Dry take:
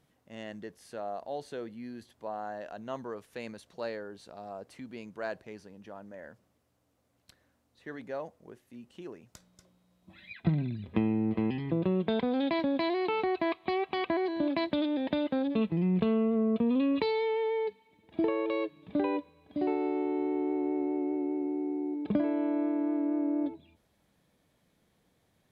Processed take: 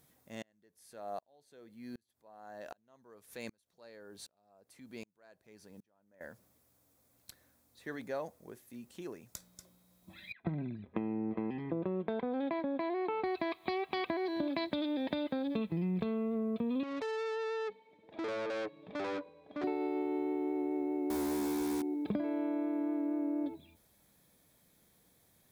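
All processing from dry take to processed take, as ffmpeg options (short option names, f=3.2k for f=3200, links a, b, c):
-filter_complex "[0:a]asettb=1/sr,asplit=3[a][b][c];[a]atrim=end=0.424[d];[b]atrim=start=0.42:end=6.21,asetpts=PTS-STARTPTS,afade=t=in:d=0.004:c=qsin,afade=t=out:st=5.786:d=0.004:c=qsin,acompressor=mode=upward:threshold=-46dB:ratio=2.5:attack=3.2:release=140:knee=2.83:detection=peak,aeval=exprs='val(0)*pow(10,-36*if(lt(mod(-1.3*n/s,1),2*abs(-1.3)/1000),1-mod(-1.3*n/s,1)/(2*abs(-1.3)/1000),(mod(-1.3*n/s,1)-2*abs(-1.3)/1000)/(1-2*abs(-1.3)/1000))/20)':c=same[e];[c]atrim=start=6.206[f];[d][e]acrossfade=d=0.004:c1=hsin:c2=qsin[g];[g][f]acrossfade=d=0.004:c1=qsin:c2=hsin,asettb=1/sr,asplit=3[h][i][j];[h]atrim=end=10.324[k];[i]atrim=start=10.32:end=13.24,asetpts=PTS-STARTPTS,afade=t=in:d=0.004:c=qsin,afade=t=out:st=2.916:d=0.004:c=qsin,agate=range=-7dB:threshold=-42dB:ratio=16:release=100:detection=peak,lowpass=1.6k,equalizer=f=100:w=0.68:g=-9.5[l];[j]atrim=start=13.236[m];[k][l]acrossfade=d=0.004:c1=hsin:c2=qsin[n];[n][m]acrossfade=d=0.004:c1=qsin:c2=hsin,asettb=1/sr,asplit=3[o][p][q];[o]atrim=end=16.834[r];[p]atrim=start=16.83:end=19.64,asetpts=PTS-STARTPTS,afade=t=in:d=0.004:c=qsin,afade=t=out:st=2.806:d=0.004:c=qsin,equalizer=f=560:w=1.4:g=10.5,aeval=exprs='(tanh(56.2*val(0)+0.55)-tanh(0.55))/56.2':c=same,highpass=130,lowpass=3.7k[s];[q]atrim=start=19.636[t];[r][s]acrossfade=d=0.004:c1=hsin:c2=qsin[u];[u][t]acrossfade=d=0.004:c1=qsin:c2=hsin,asettb=1/sr,asplit=3[v][w][x];[v]atrim=end=21.104[y];[w]atrim=start=21.1:end=21.82,asetpts=PTS-STARTPTS,afade=t=in:d=0.004:c=qsin,afade=t=out:st=0.716:d=0.004:c=qsin,asplit=2[z][aa];[aa]highpass=f=720:p=1,volume=22dB,asoftclip=type=tanh:threshold=-24dB[ab];[z][ab]amix=inputs=2:normalize=0,lowpass=f=1.2k:p=1,volume=-6dB,acrusher=bits=6:mix=0:aa=0.5[ac];[x]atrim=start=21.816[ad];[y][ac]acrossfade=d=0.004:c1=hsin:c2=qsin[ae];[ae][ad]acrossfade=d=0.004:c1=qsin:c2=hsin,aemphasis=mode=production:type=50fm,bandreject=f=2.9k:w=10,acompressor=threshold=-31dB:ratio=6"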